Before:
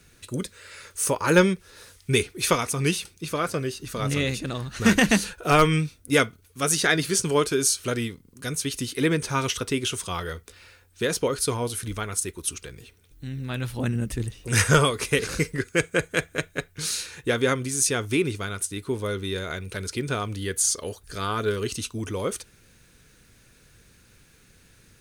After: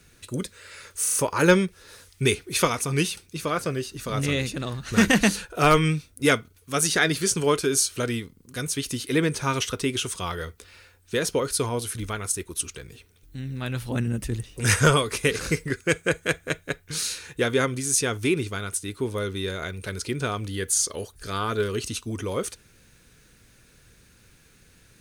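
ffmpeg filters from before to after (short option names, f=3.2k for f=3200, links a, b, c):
-filter_complex "[0:a]asplit=4[a][b][c][d];[a]atrim=end=1.062[e];[b]atrim=start=1.018:end=1.062[f];[c]atrim=start=1.018:end=1.062[g];[d]atrim=start=1.018[h];[e][f]acrossfade=d=0.004:c1=hsin:c2=hsin[i];[i][g]acrossfade=d=0.004:c1=hsin:c2=hsin[j];[j][h]acrossfade=d=0.004:c1=hsin:c2=hsin"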